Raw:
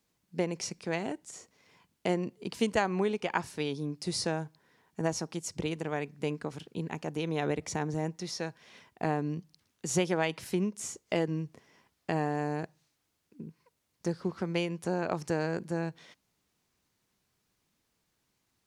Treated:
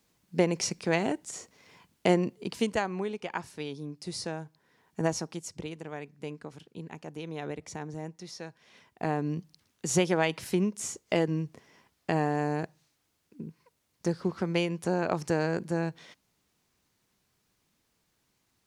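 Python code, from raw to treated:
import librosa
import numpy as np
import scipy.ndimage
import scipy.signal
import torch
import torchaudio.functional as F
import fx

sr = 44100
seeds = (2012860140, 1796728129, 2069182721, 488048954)

y = fx.gain(x, sr, db=fx.line((2.15, 6.0), (3.01, -4.0), (4.45, -4.0), (5.03, 3.0), (5.71, -6.0), (8.44, -6.0), (9.38, 3.0)))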